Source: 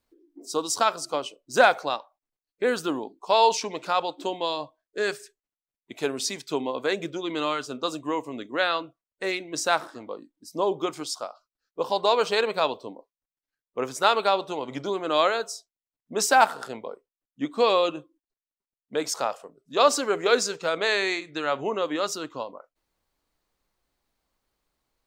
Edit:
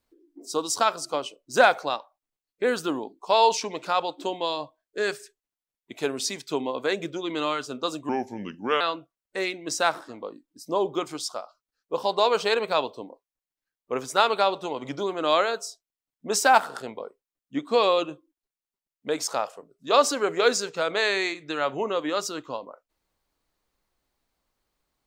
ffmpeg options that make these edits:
-filter_complex "[0:a]asplit=3[s0][s1][s2];[s0]atrim=end=8.094[s3];[s1]atrim=start=8.09:end=8.67,asetpts=PTS-STARTPTS,asetrate=35721,aresample=44100[s4];[s2]atrim=start=8.666[s5];[s3][s4]acrossfade=d=0.004:c1=hsin:c2=hsin[s6];[s6][s5]acrossfade=d=0.004:c1=hsin:c2=hsin"

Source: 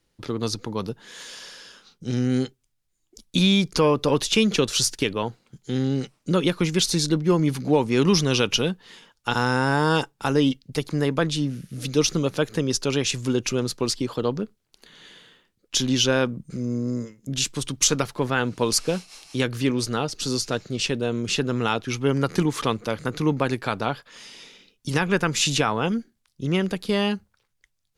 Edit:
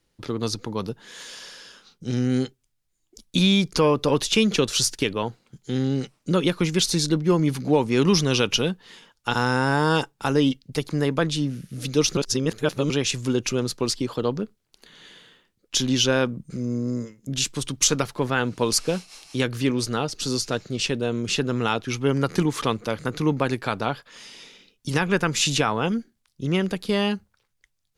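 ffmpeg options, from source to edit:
-filter_complex "[0:a]asplit=3[s0][s1][s2];[s0]atrim=end=12.172[s3];[s1]atrim=start=12.168:end=12.902,asetpts=PTS-STARTPTS,areverse[s4];[s2]atrim=start=12.898[s5];[s3][s4]acrossfade=d=0.004:c1=hsin:c2=hsin[s6];[s6][s5]acrossfade=d=0.004:c1=hsin:c2=hsin"

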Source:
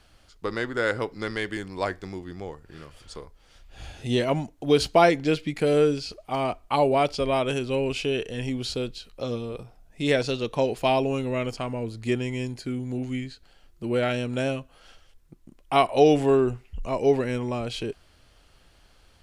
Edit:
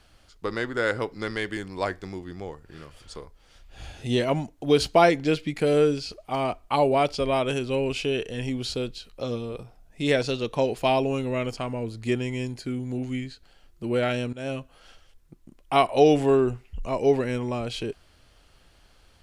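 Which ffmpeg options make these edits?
-filter_complex "[0:a]asplit=2[s0][s1];[s0]atrim=end=14.33,asetpts=PTS-STARTPTS,afade=t=out:st=14.326:d=0.004:c=hsin:silence=0.0891251[s2];[s1]atrim=start=14.33,asetpts=PTS-STARTPTS,afade=t=in:d=0.26:silence=0.0891251[s3];[s2][s3]concat=n=2:v=0:a=1"

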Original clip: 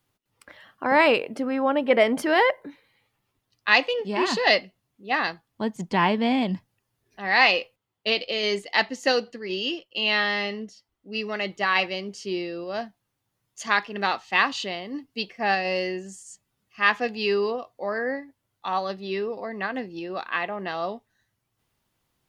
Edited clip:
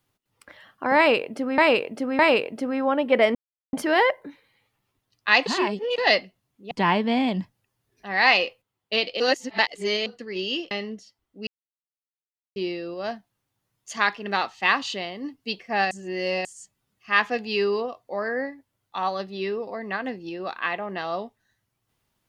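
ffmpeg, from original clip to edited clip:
-filter_complex "[0:a]asplit=14[s0][s1][s2][s3][s4][s5][s6][s7][s8][s9][s10][s11][s12][s13];[s0]atrim=end=1.582[s14];[s1]atrim=start=0.968:end=1.582[s15];[s2]atrim=start=0.968:end=2.13,asetpts=PTS-STARTPTS,afade=t=out:st=1.158:d=0.004:c=hsin,apad=pad_dur=0.38[s16];[s3]atrim=start=2.13:end=3.862,asetpts=PTS-STARTPTS,afade=t=in:d=0.004:c=hsin[s17];[s4]atrim=start=3.858:end=4.382,asetpts=PTS-STARTPTS,areverse[s18];[s5]atrim=start=4.378:end=5.112[s19];[s6]atrim=start=5.848:end=8.342[s20];[s7]atrim=start=8.338:end=9.202,asetpts=PTS-STARTPTS,areverse[s21];[s8]atrim=start=9.198:end=9.852[s22];[s9]atrim=start=10.408:end=11.17,asetpts=PTS-STARTPTS,afade=t=out:st=0.758:d=0.004:c=hsin[s23];[s10]atrim=start=11.17:end=12.26,asetpts=PTS-STARTPTS,volume=0[s24];[s11]atrim=start=12.26:end=15.612,asetpts=PTS-STARTPTS,afade=t=in:d=0.004:c=hsin[s25];[s12]atrim=start=15.608:end=16.152,asetpts=PTS-STARTPTS,areverse[s26];[s13]atrim=start=16.148[s27];[s14][s15]acrossfade=d=0.004:c1=hsin:c2=hsin[s28];[s16][s17]concat=n=2:v=0:a=1[s29];[s28][s29]acrossfade=d=0.004:c1=hsin:c2=hsin[s30];[s30][s18]acrossfade=d=0.004:c1=hsin:c2=hsin[s31];[s31][s19]acrossfade=d=0.004:c1=hsin:c2=hsin[s32];[s32][s20]acrossfade=d=0.004:c1=hsin:c2=hsin[s33];[s33][s21]acrossfade=d=0.004:c1=hsin:c2=hsin[s34];[s34][s22]acrossfade=d=0.004:c1=hsin:c2=hsin[s35];[s23][s24][s25]concat=n=3:v=0:a=1[s36];[s35][s36]acrossfade=d=0.004:c1=hsin:c2=hsin[s37];[s37][s26]acrossfade=d=0.004:c1=hsin:c2=hsin[s38];[s38][s27]acrossfade=d=0.004:c1=hsin:c2=hsin"

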